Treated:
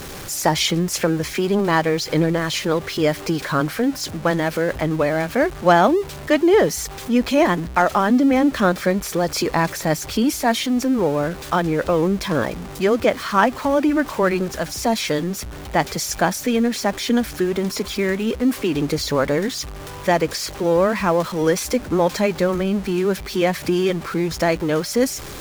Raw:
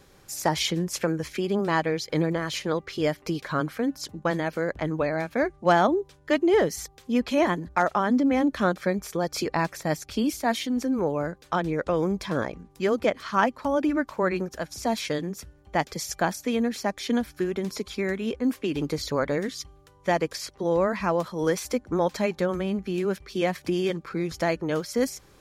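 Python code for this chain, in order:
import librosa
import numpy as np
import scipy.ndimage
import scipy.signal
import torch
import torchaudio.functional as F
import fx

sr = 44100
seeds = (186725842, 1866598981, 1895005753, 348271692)

y = x + 0.5 * 10.0 ** (-34.5 / 20.0) * np.sign(x)
y = F.gain(torch.from_numpy(y), 5.5).numpy()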